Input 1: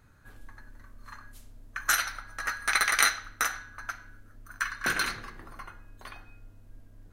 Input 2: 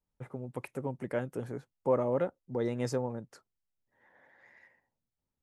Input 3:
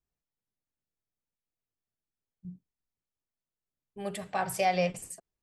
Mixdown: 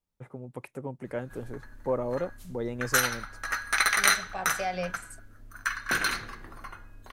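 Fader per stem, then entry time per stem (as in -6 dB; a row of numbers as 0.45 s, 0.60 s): +1.0 dB, -1.0 dB, -5.0 dB; 1.05 s, 0.00 s, 0.00 s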